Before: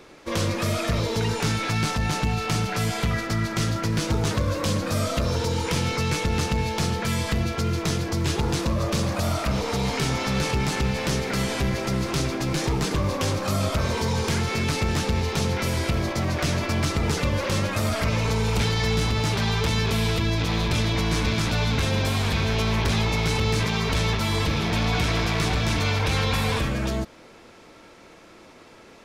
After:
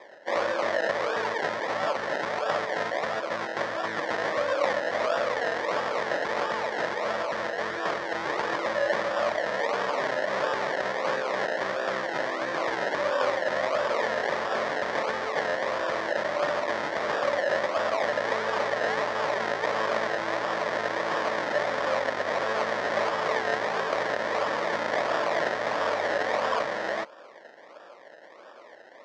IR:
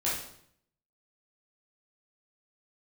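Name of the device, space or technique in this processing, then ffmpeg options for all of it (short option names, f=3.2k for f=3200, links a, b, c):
circuit-bent sampling toy: -af "acrusher=samples=30:mix=1:aa=0.000001:lfo=1:lforange=18:lforate=1.5,highpass=560,equalizer=f=580:t=q:w=4:g=10,equalizer=f=1.1k:t=q:w=4:g=4,equalizer=f=1.8k:t=q:w=4:g=9,equalizer=f=2.7k:t=q:w=4:g=-6,equalizer=f=4.2k:t=q:w=4:g=-3,lowpass=f=5.2k:w=0.5412,lowpass=f=5.2k:w=1.3066"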